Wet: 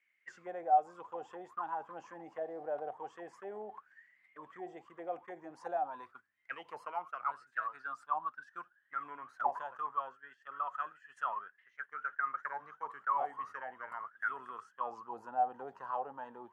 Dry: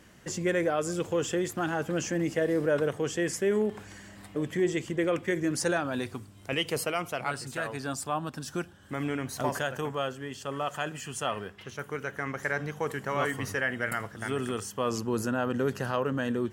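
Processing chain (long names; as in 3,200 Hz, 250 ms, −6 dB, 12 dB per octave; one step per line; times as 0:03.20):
noise gate −37 dBFS, range −12 dB
envelope filter 750–2,200 Hz, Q 21, down, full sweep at −24 dBFS
level +10 dB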